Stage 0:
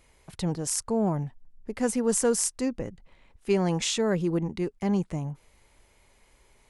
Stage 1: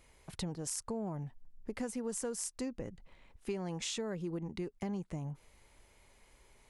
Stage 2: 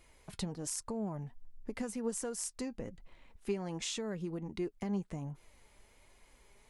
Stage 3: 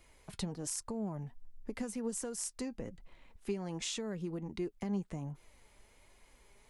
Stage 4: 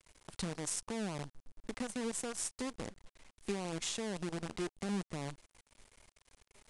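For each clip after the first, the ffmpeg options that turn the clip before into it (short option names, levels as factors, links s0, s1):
-af "acompressor=threshold=0.0224:ratio=6,volume=0.75"
-af "flanger=delay=2.8:depth=2.2:regen=67:speed=1.3:shape=sinusoidal,volume=1.68"
-filter_complex "[0:a]acrossover=split=390|3000[s0][s1][s2];[s1]acompressor=threshold=0.00794:ratio=6[s3];[s0][s3][s2]amix=inputs=3:normalize=0"
-af "acrusher=bits=7:dc=4:mix=0:aa=0.000001,aresample=22050,aresample=44100,crystalizer=i=0.5:c=0,volume=0.841"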